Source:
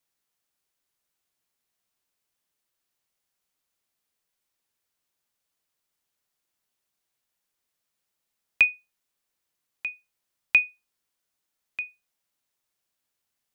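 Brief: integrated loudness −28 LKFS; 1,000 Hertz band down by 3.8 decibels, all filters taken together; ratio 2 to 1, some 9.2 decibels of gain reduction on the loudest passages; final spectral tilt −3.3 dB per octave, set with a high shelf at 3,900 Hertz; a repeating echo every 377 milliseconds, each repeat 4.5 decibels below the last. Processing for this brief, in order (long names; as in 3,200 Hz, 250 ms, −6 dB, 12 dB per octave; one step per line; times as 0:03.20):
parametric band 1,000 Hz −4.5 dB
high-shelf EQ 3,900 Hz −5 dB
downward compressor 2 to 1, threshold −33 dBFS
repeating echo 377 ms, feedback 60%, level −4.5 dB
level +9 dB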